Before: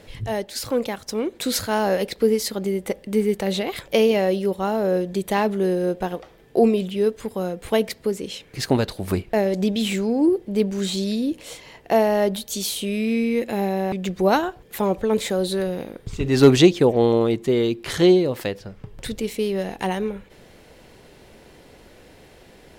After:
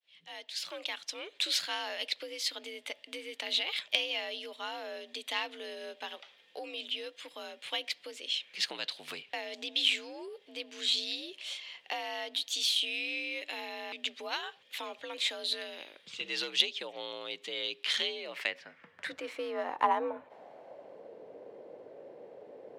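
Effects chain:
fade in at the beginning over 0.81 s
downward compressor 6 to 1, threshold −19 dBFS, peak gain reduction 12 dB
band-pass filter sweep 3,100 Hz → 440 Hz, 0:17.92–0:21.17
harmonic generator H 3 −20 dB, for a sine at −15.5 dBFS
frequency shifter +60 Hz
level +7.5 dB

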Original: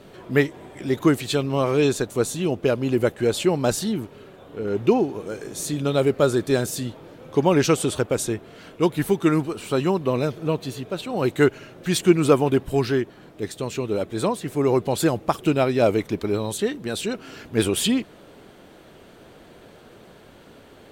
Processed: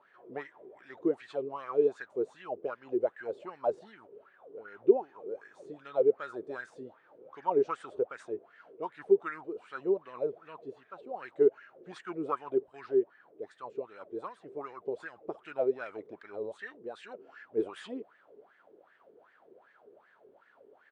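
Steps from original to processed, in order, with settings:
stylus tracing distortion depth 0.021 ms
downsampling to 22,050 Hz
0:11.92–0:12.91: noise gate −27 dBFS, range −7 dB
0:14.71–0:15.25: downward compressor, threshold −19 dBFS, peak gain reduction 5 dB
LFO wah 2.6 Hz 390–1,800 Hz, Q 8.5

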